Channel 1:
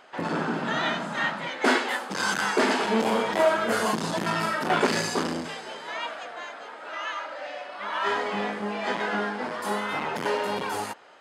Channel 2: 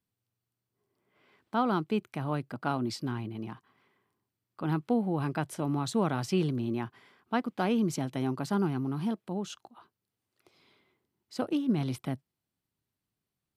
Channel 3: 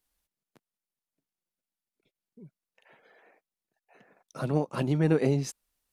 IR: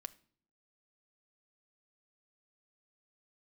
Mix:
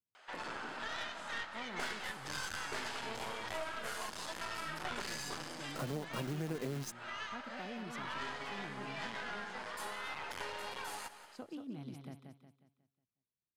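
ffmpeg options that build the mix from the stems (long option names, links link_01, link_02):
-filter_complex "[0:a]highpass=frequency=1400:poles=1,aeval=exprs='0.224*(cos(1*acos(clip(val(0)/0.224,-1,1)))-cos(1*PI/2))+0.0316*(cos(6*acos(clip(val(0)/0.224,-1,1)))-cos(6*PI/2))':channel_layout=same,adelay=150,volume=-4dB,asplit=2[link_01][link_02];[link_02]volume=-17.5dB[link_03];[1:a]volume=-15.5dB,asplit=2[link_04][link_05];[link_05]volume=-6dB[link_06];[2:a]acompressor=threshold=-28dB:ratio=2.5,acrusher=bits=7:dc=4:mix=0:aa=0.000001,adelay=1400,volume=1.5dB[link_07];[link_03][link_06]amix=inputs=2:normalize=0,aecho=0:1:181|362|543|724|905|1086:1|0.4|0.16|0.064|0.0256|0.0102[link_08];[link_01][link_04][link_07][link_08]amix=inputs=4:normalize=0,acompressor=threshold=-41dB:ratio=2.5"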